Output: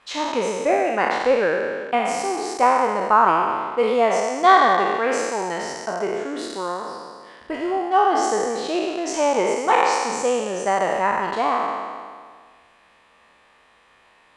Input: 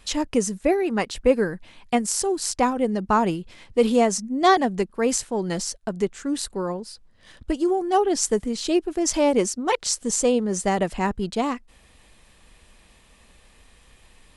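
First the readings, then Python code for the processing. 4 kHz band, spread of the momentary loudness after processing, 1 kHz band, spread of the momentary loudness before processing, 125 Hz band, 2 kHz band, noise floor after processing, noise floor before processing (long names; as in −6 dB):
−0.5 dB, 12 LU, +7.5 dB, 8 LU, can't be measured, +7.0 dB, −56 dBFS, −55 dBFS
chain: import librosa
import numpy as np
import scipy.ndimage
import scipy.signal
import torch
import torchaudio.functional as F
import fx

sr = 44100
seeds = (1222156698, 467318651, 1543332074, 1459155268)

y = fx.spec_trails(x, sr, decay_s=1.82)
y = fx.bandpass_q(y, sr, hz=1100.0, q=0.99)
y = F.gain(torch.from_numpy(y), 4.0).numpy()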